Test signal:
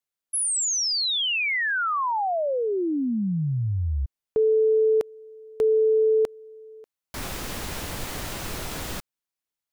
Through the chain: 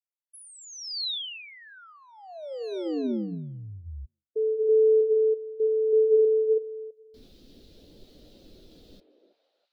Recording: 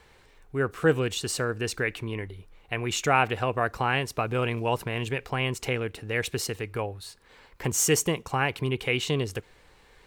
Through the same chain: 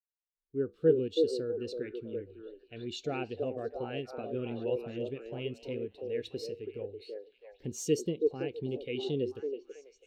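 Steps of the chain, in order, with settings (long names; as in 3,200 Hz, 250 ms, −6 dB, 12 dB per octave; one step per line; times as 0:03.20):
echo through a band-pass that steps 327 ms, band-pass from 450 Hz, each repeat 0.7 octaves, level 0 dB
downward expander −42 dBFS
octave-band graphic EQ 125/250/500/1,000/2,000/4,000/8,000 Hz −3/+6/+3/−11/−6/+10/−5 dB
flanger 0.24 Hz, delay 3.9 ms, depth 9.5 ms, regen −85%
every bin expanded away from the loudest bin 1.5 to 1
level −1 dB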